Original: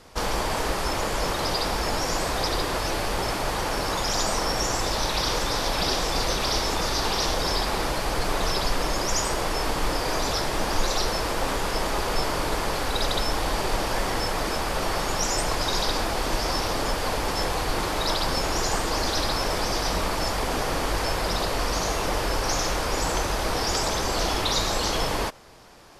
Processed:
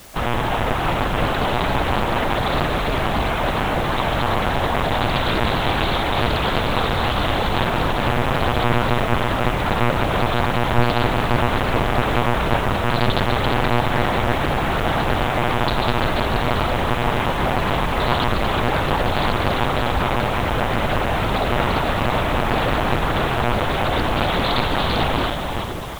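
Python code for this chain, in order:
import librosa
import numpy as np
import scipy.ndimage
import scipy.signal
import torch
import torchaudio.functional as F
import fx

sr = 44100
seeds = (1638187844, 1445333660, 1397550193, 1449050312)

p1 = x + fx.echo_split(x, sr, split_hz=400.0, low_ms=549, high_ms=341, feedback_pct=52, wet_db=-5.0, dry=0)
p2 = fx.lpc_monotone(p1, sr, seeds[0], pitch_hz=120.0, order=10)
p3 = fx.quant_dither(p2, sr, seeds[1], bits=6, dither='triangular')
p4 = p2 + (p3 * 10.0 ** (-9.5 / 20.0))
p5 = fx.doppler_dist(p4, sr, depth_ms=0.46)
y = p5 * 10.0 ** (2.5 / 20.0)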